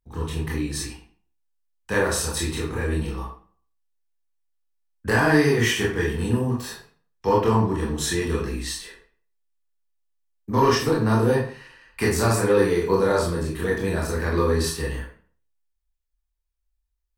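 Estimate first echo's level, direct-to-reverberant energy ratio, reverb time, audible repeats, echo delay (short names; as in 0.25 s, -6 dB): none, -4.0 dB, 0.45 s, none, none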